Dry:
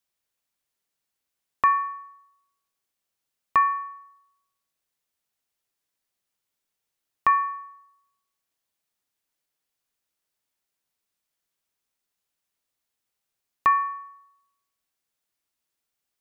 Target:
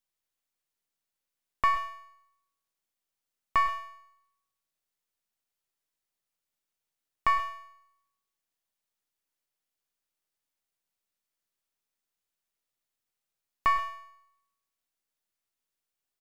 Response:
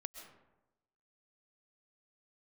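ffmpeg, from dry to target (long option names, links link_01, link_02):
-filter_complex "[0:a]aeval=exprs='if(lt(val(0),0),0.447*val(0),val(0))':channel_layout=same,aecho=1:1:102:0.126[link_01];[1:a]atrim=start_sample=2205,afade=type=out:start_time=0.18:duration=0.01,atrim=end_sample=8379[link_02];[link_01][link_02]afir=irnorm=-1:irlink=0,volume=1.5dB"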